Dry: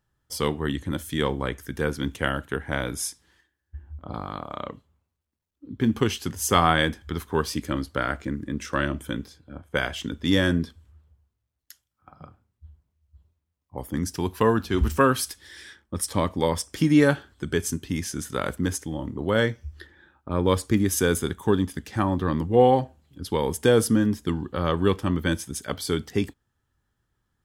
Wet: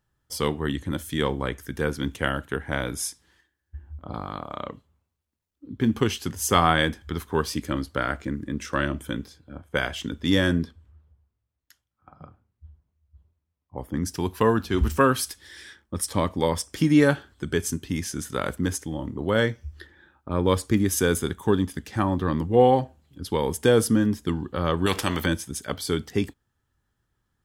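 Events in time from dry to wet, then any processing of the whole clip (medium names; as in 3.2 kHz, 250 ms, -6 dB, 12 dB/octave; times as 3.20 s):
10.64–14.05 s: treble shelf 3.9 kHz -12 dB
24.86–25.26 s: spectrum-flattening compressor 2:1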